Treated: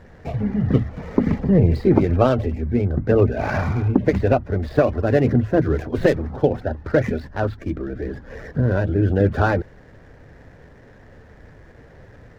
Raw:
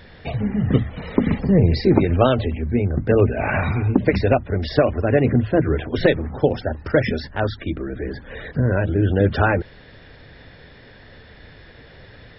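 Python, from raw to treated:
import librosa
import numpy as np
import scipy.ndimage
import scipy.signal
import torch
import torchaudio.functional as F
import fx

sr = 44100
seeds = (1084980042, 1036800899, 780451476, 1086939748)

y = scipy.ndimage.median_filter(x, 15, mode='constant')
y = fx.high_shelf(y, sr, hz=4600.0, db=fx.steps((0.0, -10.0), (4.75, -4.0), (6.46, -11.0)))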